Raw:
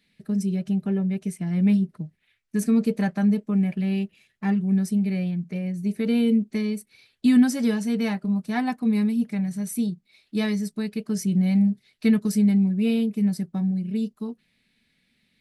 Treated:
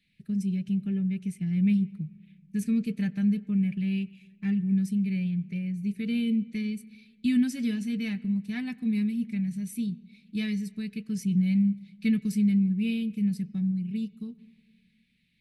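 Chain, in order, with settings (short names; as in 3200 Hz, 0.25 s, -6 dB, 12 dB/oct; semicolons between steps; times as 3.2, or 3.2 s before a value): EQ curve 150 Hz 0 dB, 870 Hz -24 dB, 2500 Hz -1 dB, 5200 Hz -9 dB; on a send: reverb RT60 1.4 s, pre-delay 95 ms, DRR 21 dB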